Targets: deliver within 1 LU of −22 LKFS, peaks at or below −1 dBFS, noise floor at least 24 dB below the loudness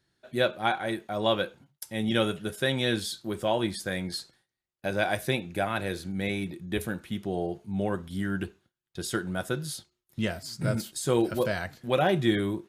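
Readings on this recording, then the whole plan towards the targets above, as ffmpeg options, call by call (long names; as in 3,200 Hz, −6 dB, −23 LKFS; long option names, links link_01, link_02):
integrated loudness −29.5 LKFS; sample peak −10.0 dBFS; target loudness −22.0 LKFS
→ -af "volume=7.5dB"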